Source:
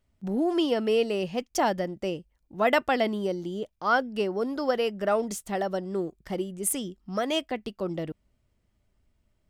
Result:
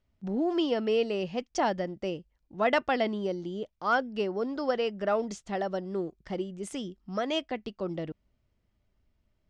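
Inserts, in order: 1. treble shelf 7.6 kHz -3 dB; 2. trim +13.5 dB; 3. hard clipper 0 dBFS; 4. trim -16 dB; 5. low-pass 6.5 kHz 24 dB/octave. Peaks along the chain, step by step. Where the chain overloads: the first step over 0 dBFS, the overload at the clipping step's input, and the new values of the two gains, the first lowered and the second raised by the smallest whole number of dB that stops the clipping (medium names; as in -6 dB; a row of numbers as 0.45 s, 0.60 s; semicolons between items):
-10.0 dBFS, +3.5 dBFS, 0.0 dBFS, -16.0 dBFS, -15.5 dBFS; step 2, 3.5 dB; step 2 +9.5 dB, step 4 -12 dB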